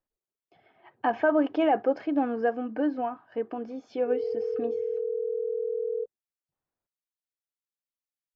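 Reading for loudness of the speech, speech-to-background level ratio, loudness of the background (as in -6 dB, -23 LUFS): -28.5 LUFS, 3.0 dB, -31.5 LUFS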